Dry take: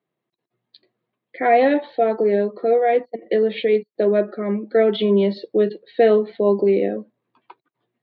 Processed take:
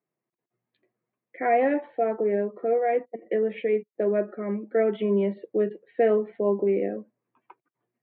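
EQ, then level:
Butterworth low-pass 2,600 Hz 36 dB per octave
−6.5 dB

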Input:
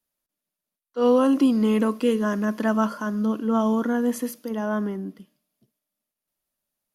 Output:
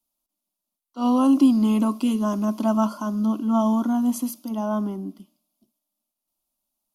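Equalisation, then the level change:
phaser with its sweep stopped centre 470 Hz, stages 6
+3.0 dB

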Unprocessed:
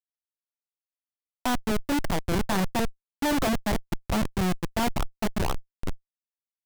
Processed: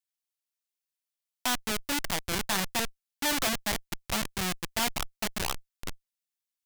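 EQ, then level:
tilt shelving filter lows −8 dB, about 1,200 Hz
−2.0 dB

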